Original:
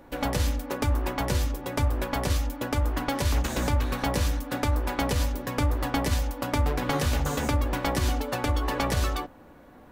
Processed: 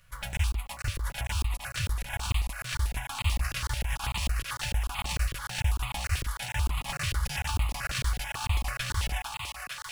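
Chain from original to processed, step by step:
parametric band 3,500 Hz +6 dB 0.52 octaves
in parallel at −11.5 dB: log-companded quantiser 4 bits
on the sum: formants moved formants −5 semitones
Chebyshev band-stop filter 110–1,100 Hz, order 2
on a send: feedback echo with a high-pass in the loop 458 ms, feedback 81%, high-pass 370 Hz, level −4 dB
on the sum: regular buffer underruns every 0.15 s, samples 1,024, zero, from 0:00.37
step-sequenced phaser 9.1 Hz 230–1,600 Hz
level −2 dB

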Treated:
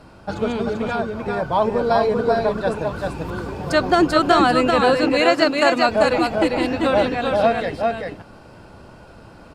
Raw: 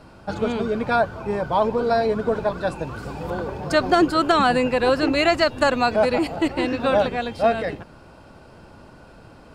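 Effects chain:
0:00.70–0:01.37: downward compressor, threshold −23 dBFS, peak gain reduction 8.5 dB
0:03.10–0:03.52: flat-topped bell 620 Hz −8.5 dB 1.1 octaves
0:04.81–0:05.89: high-pass filter 160 Hz 24 dB per octave
multi-tap delay 381/391 ms −17.5/−3.5 dB
level +1 dB
Opus 64 kbit/s 48,000 Hz

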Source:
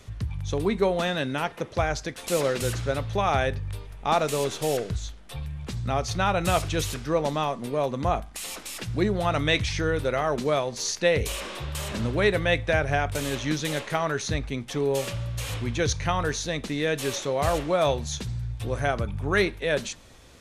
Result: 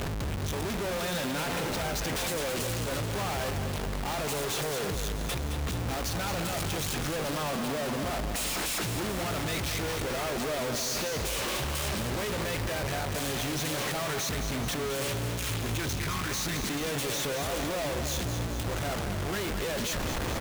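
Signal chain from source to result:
time-frequency box erased 0:15.19–0:16.77, 450–970 Hz
tube saturation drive 27 dB, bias 0.2
comparator with hysteresis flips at −54 dBFS
repeating echo 217 ms, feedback 59%, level −8 dB

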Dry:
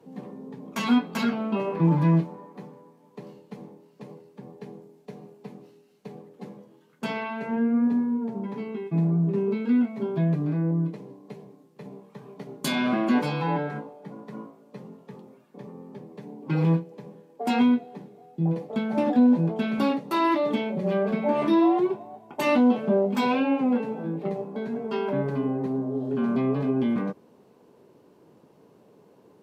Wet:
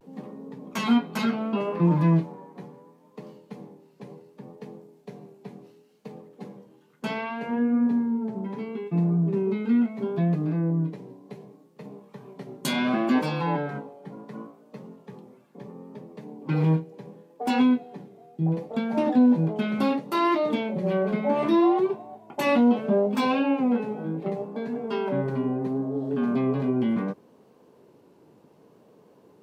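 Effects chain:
pitch vibrato 0.7 Hz 61 cents

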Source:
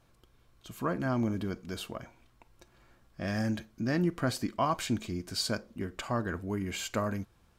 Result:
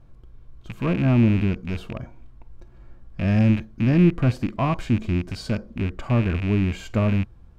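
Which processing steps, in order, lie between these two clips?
loose part that buzzes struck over −42 dBFS, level −22 dBFS
harmonic and percussive parts rebalanced harmonic +5 dB
spectral tilt −3.5 dB per octave

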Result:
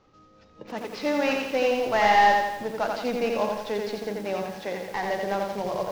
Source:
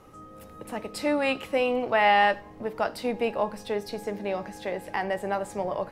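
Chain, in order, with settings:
variable-slope delta modulation 32 kbit/s
noise reduction from a noise print of the clip's start 9 dB
feedback echo at a low word length 86 ms, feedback 55%, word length 8 bits, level −3 dB

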